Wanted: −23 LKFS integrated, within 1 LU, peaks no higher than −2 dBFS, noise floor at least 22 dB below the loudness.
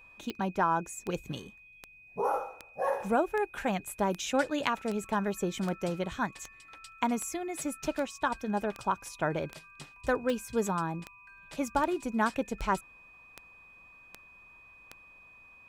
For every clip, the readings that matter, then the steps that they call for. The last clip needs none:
number of clicks 20; interfering tone 2,500 Hz; level of the tone −53 dBFS; integrated loudness −32.5 LKFS; sample peak −13.0 dBFS; target loudness −23.0 LKFS
→ click removal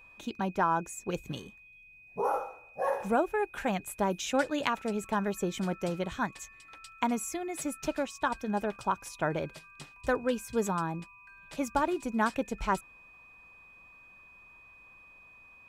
number of clicks 0; interfering tone 2,500 Hz; level of the tone −53 dBFS
→ notch filter 2,500 Hz, Q 30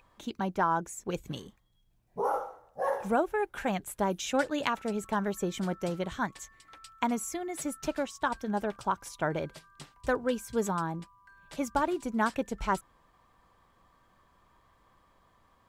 interfering tone none found; integrated loudness −32.5 LKFS; sample peak −13.5 dBFS; target loudness −23.0 LKFS
→ level +9.5 dB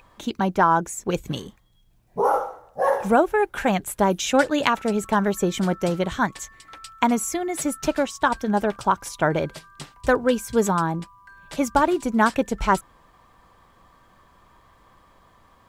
integrated loudness −23.0 LKFS; sample peak −4.0 dBFS; background noise floor −57 dBFS

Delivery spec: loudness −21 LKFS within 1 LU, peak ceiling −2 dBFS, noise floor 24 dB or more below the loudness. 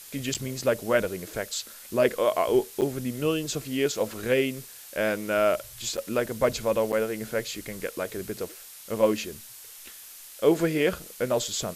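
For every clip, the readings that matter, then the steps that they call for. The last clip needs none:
number of dropouts 4; longest dropout 7.8 ms; background noise floor −46 dBFS; target noise floor −52 dBFS; integrated loudness −27.5 LKFS; sample peak −9.0 dBFS; target loudness −21.0 LKFS
→ repair the gap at 0:00.34/0:02.81/0:05.97/0:06.92, 7.8 ms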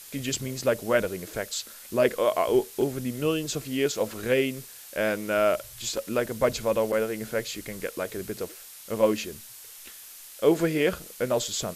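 number of dropouts 0; background noise floor −46 dBFS; target noise floor −52 dBFS
→ noise reduction from a noise print 6 dB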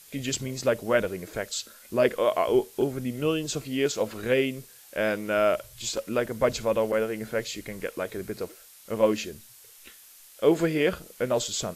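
background noise floor −52 dBFS; integrated loudness −27.5 LKFS; sample peak −9.0 dBFS; target loudness −21.0 LKFS
→ level +6.5 dB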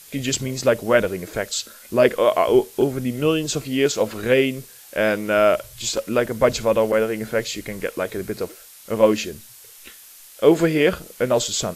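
integrated loudness −21.0 LKFS; sample peak −2.5 dBFS; background noise floor −45 dBFS

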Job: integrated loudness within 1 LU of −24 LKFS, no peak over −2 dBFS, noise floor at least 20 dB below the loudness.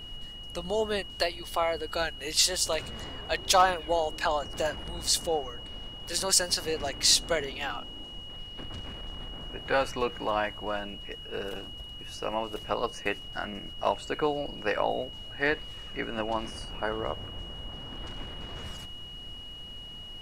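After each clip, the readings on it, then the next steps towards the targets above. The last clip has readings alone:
interfering tone 2,900 Hz; level of the tone −42 dBFS; background noise floor −43 dBFS; target noise floor −50 dBFS; integrated loudness −30.0 LKFS; sample peak −11.0 dBFS; target loudness −24.0 LKFS
→ notch filter 2,900 Hz, Q 30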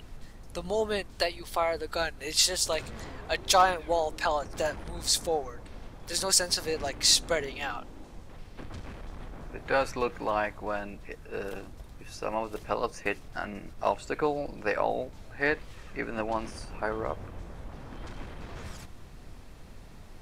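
interfering tone none found; background noise floor −47 dBFS; target noise floor −49 dBFS
→ noise reduction from a noise print 6 dB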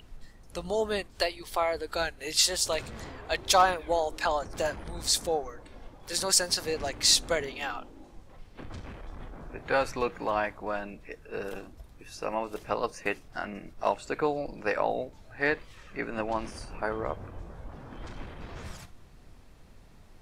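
background noise floor −53 dBFS; integrated loudness −29.0 LKFS; sample peak −11.5 dBFS; target loudness −24.0 LKFS
→ level +5 dB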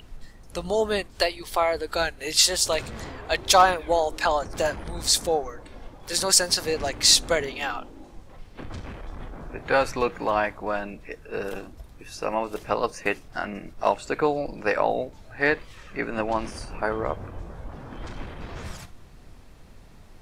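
integrated loudness −24.0 LKFS; sample peak −6.5 dBFS; background noise floor −48 dBFS

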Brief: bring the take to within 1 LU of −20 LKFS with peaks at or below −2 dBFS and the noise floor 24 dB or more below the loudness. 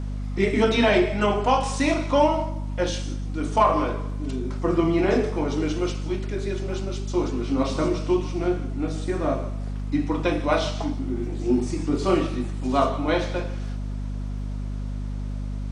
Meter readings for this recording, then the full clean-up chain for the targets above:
crackle rate 19 per second; mains hum 50 Hz; hum harmonics up to 250 Hz; level of the hum −27 dBFS; integrated loudness −25.0 LKFS; sample peak −5.0 dBFS; target loudness −20.0 LKFS
→ click removal
mains-hum notches 50/100/150/200/250 Hz
level +5 dB
brickwall limiter −2 dBFS

